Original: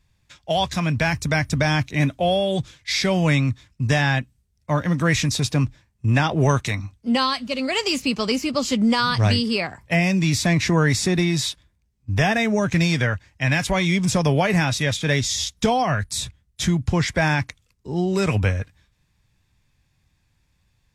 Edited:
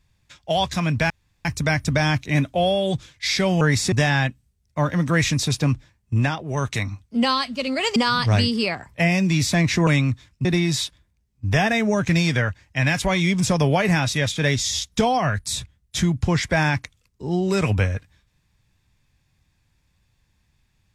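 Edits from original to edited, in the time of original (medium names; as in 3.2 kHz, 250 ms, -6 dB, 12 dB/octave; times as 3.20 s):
1.10 s: insert room tone 0.35 s
3.26–3.84 s: swap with 10.79–11.10 s
6.07–6.69 s: dip -12.5 dB, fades 0.29 s
7.88–8.88 s: delete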